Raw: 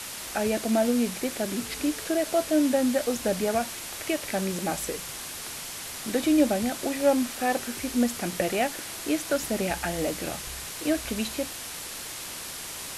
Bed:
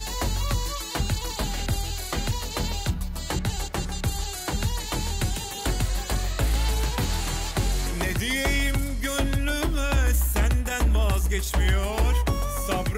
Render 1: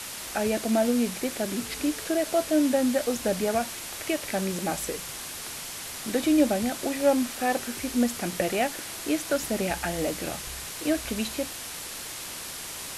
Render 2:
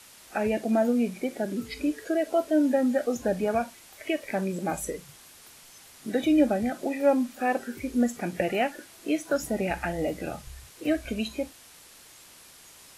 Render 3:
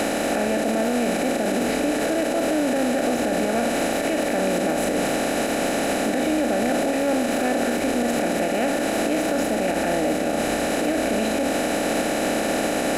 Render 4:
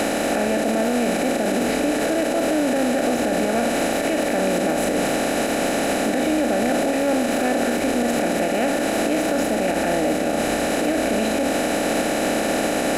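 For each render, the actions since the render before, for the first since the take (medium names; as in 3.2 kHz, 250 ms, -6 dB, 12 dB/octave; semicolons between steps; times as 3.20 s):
no audible change
noise print and reduce 14 dB
spectral levelling over time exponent 0.2; peak limiter -13.5 dBFS, peak gain reduction 11 dB
trim +1.5 dB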